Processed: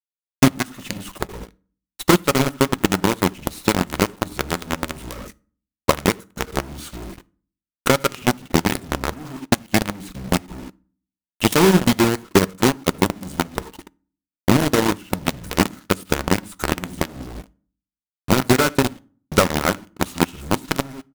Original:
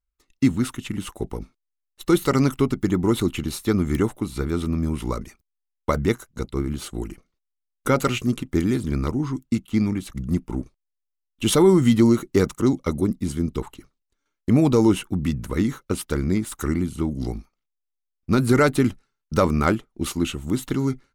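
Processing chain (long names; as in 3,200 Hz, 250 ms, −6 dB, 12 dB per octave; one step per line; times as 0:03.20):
harmonic generator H 2 −22 dB, 7 −42 dB, 8 −37 dB, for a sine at −6 dBFS
in parallel at −2.5 dB: downward compressor 16 to 1, threshold −27 dBFS, peak gain reduction 17 dB
on the sum: far-end echo of a speakerphone 80 ms, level −6 dB
log-companded quantiser 2 bits
soft clipping −1 dBFS, distortion −21 dB
on a send at −11 dB: convolution reverb RT60 0.45 s, pre-delay 3 ms
on the sum: transient designer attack +8 dB, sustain −8 dB
level −8.5 dB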